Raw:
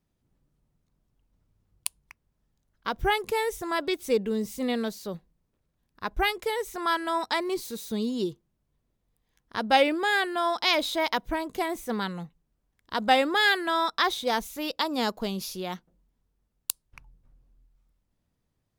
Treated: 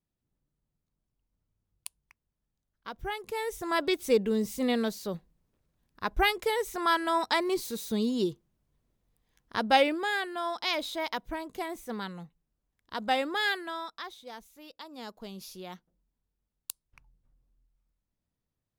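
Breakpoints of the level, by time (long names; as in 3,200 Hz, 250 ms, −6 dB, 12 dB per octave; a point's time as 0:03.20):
0:03.16 −10.5 dB
0:03.77 +0.5 dB
0:09.56 +0.5 dB
0:10.22 −6.5 dB
0:13.50 −6.5 dB
0:14.12 −18 dB
0:14.83 −18 dB
0:15.51 −9 dB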